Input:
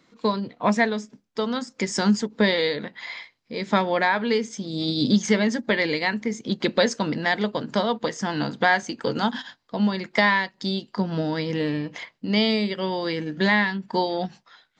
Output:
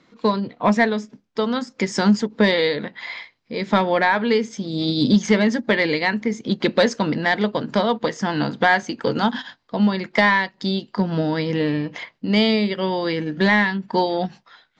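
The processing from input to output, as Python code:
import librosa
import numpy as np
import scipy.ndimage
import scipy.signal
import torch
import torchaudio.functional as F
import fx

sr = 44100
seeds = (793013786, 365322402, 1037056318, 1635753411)

p1 = np.clip(10.0 ** (15.0 / 20.0) * x, -1.0, 1.0) / 10.0 ** (15.0 / 20.0)
p2 = x + (p1 * 10.0 ** (-4.0 / 20.0))
y = fx.air_absorb(p2, sr, metres=80.0)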